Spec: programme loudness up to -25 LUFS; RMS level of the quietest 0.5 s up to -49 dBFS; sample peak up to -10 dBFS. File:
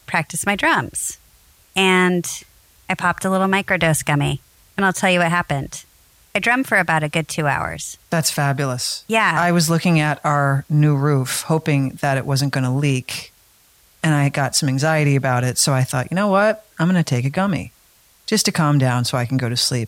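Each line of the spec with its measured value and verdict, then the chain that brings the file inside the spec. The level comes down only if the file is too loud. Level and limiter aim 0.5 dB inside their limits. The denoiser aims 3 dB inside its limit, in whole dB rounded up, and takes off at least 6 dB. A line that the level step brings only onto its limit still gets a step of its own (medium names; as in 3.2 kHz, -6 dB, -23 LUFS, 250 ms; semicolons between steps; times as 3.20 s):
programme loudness -18.5 LUFS: fail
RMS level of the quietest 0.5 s -54 dBFS: pass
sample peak -5.0 dBFS: fail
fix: trim -7 dB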